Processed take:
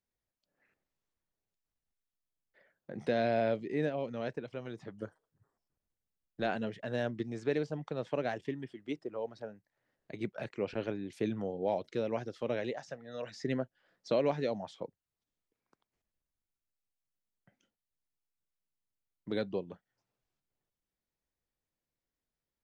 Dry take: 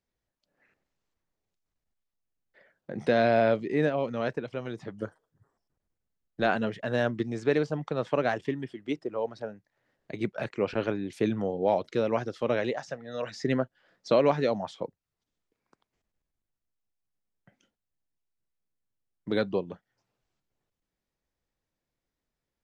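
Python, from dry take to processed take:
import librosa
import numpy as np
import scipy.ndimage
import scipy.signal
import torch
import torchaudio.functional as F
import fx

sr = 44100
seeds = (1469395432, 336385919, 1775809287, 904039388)

y = fx.dynamic_eq(x, sr, hz=1200.0, q=1.9, threshold_db=-43.0, ratio=4.0, max_db=-6)
y = y * 10.0 ** (-6.5 / 20.0)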